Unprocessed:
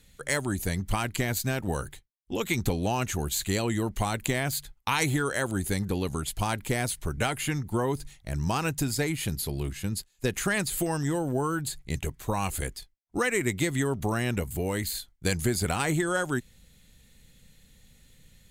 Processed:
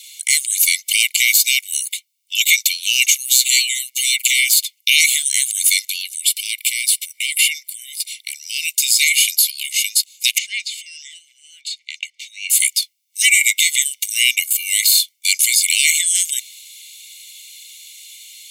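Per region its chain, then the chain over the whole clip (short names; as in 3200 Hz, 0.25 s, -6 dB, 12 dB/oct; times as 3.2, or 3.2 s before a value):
3.15–4.48 robotiser 129 Hz + dispersion lows, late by 43 ms, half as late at 1100 Hz
6.01–8.77 notch 6600 Hz, Q 7.2 + compressor 4:1, threshold -33 dBFS
10.38–12.5 compressor 2:1, threshold -40 dBFS + air absorption 150 m
whole clip: steep high-pass 2200 Hz 96 dB/oct; comb 1.4 ms, depth 75%; maximiser +23.5 dB; gain -1 dB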